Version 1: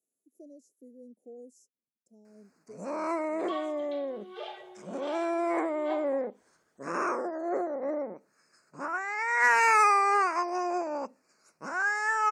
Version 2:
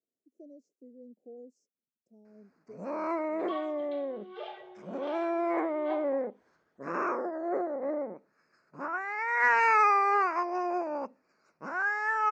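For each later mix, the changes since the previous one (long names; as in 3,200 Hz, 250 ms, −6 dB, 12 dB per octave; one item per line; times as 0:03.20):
master: add high-frequency loss of the air 200 metres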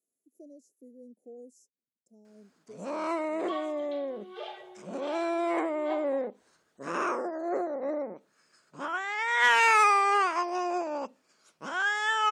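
first sound: remove Butterworth band-reject 3,300 Hz, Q 1.6
master: remove high-frequency loss of the air 200 metres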